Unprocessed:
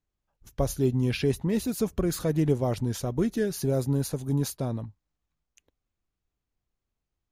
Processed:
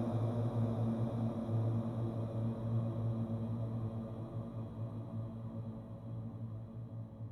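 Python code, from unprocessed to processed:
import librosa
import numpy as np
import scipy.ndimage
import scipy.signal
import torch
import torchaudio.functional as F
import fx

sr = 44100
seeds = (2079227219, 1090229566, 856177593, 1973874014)

y = fx.paulstretch(x, sr, seeds[0], factor=45.0, window_s=0.5, from_s=4.81)
y = F.gain(torch.from_numpy(y), -1.0).numpy()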